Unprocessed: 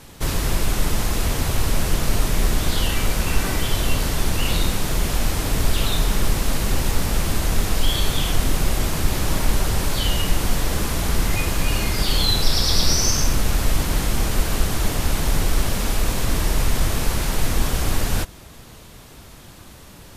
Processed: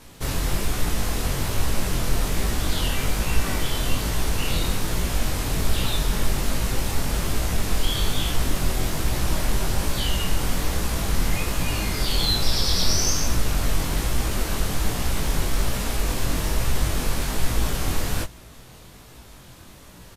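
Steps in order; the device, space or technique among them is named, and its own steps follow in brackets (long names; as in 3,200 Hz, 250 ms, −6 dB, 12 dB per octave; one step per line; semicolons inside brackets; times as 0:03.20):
double-tracked vocal (double-tracking delay 16 ms −13 dB; chorus effect 1.2 Hz, delay 17 ms, depth 7.1 ms)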